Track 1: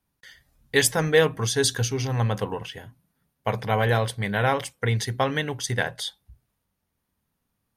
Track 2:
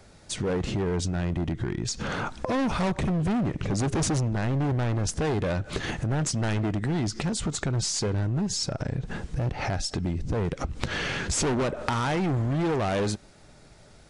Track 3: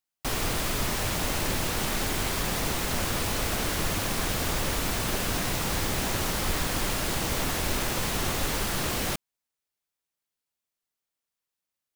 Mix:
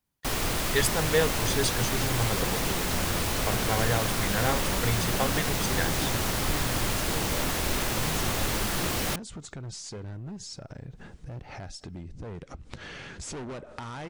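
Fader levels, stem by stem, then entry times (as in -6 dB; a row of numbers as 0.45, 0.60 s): -6.0, -12.0, 0.0 dB; 0.00, 1.90, 0.00 s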